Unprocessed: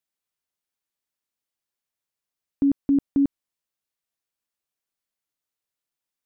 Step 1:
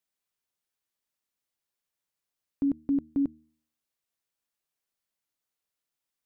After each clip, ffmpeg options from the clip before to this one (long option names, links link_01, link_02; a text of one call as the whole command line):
ffmpeg -i in.wav -af "alimiter=limit=-21dB:level=0:latency=1:release=267,bandreject=frequency=77.79:width_type=h:width=4,bandreject=frequency=155.58:width_type=h:width=4,bandreject=frequency=233.37:width_type=h:width=4,bandreject=frequency=311.16:width_type=h:width=4" out.wav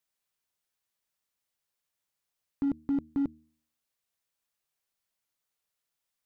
ffmpeg -i in.wav -af "equalizer=frequency=290:width=1.3:gain=-4,asoftclip=type=hard:threshold=-26dB,volume=2dB" out.wav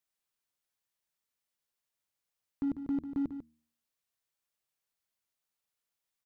ffmpeg -i in.wav -af "aecho=1:1:146:0.316,volume=-3.5dB" out.wav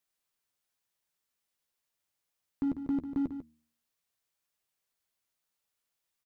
ffmpeg -i in.wav -filter_complex "[0:a]asplit=2[link_01][link_02];[link_02]adelay=12,volume=-11.5dB[link_03];[link_01][link_03]amix=inputs=2:normalize=0,volume=2.5dB" out.wav